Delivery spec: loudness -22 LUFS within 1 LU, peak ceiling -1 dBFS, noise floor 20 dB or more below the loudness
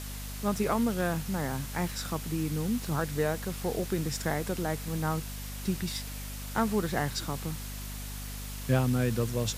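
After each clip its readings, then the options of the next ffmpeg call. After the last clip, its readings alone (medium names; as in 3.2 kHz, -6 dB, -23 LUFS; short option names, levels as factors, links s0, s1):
hum 50 Hz; highest harmonic 250 Hz; hum level -37 dBFS; noise floor -39 dBFS; noise floor target -52 dBFS; loudness -31.5 LUFS; peak level -13.5 dBFS; loudness target -22.0 LUFS
-> -af "bandreject=f=50:t=h:w=4,bandreject=f=100:t=h:w=4,bandreject=f=150:t=h:w=4,bandreject=f=200:t=h:w=4,bandreject=f=250:t=h:w=4"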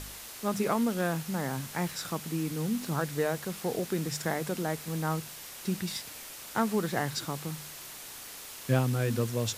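hum not found; noise floor -45 dBFS; noise floor target -53 dBFS
-> -af "afftdn=nr=8:nf=-45"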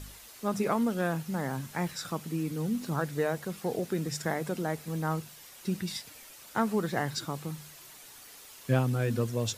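noise floor -51 dBFS; noise floor target -52 dBFS
-> -af "afftdn=nr=6:nf=-51"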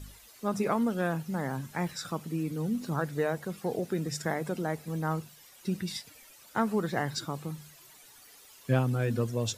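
noise floor -55 dBFS; loudness -32.0 LUFS; peak level -14.0 dBFS; loudness target -22.0 LUFS
-> -af "volume=3.16"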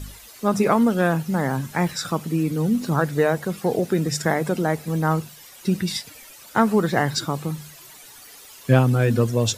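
loudness -22.0 LUFS; peak level -4.0 dBFS; noise floor -45 dBFS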